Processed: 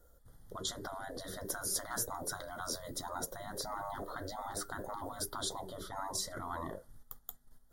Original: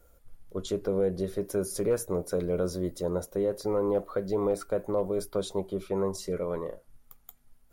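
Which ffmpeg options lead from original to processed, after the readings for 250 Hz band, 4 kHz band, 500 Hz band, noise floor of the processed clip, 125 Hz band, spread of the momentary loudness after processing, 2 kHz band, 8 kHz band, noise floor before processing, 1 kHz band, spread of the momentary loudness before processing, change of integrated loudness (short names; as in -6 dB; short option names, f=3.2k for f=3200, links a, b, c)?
-15.5 dB, +3.5 dB, -17.5 dB, -64 dBFS, -13.0 dB, 10 LU, +3.0 dB, +3.5 dB, -61 dBFS, +1.0 dB, 5 LU, -9.5 dB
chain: -af "agate=range=-8dB:threshold=-53dB:ratio=16:detection=peak,afftfilt=real='re*lt(hypot(re,im),0.0501)':imag='im*lt(hypot(re,im),0.0501)':win_size=1024:overlap=0.75,asuperstop=centerf=2500:order=8:qfactor=2.2,volume=4.5dB"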